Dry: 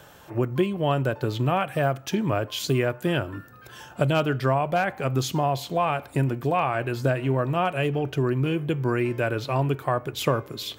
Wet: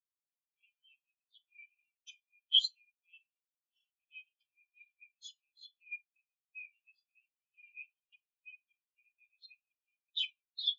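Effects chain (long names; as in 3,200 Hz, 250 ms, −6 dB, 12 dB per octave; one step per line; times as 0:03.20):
downward compressor 2 to 1, threshold −28 dBFS, peak gain reduction 6.5 dB
bit reduction 7 bits
soft clipping −26.5 dBFS, distortion −11 dB
linear-phase brick-wall band-pass 2,300–7,700 Hz
four-comb reverb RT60 0.54 s, combs from 29 ms, DRR 6.5 dB
every bin expanded away from the loudest bin 4 to 1
level +8.5 dB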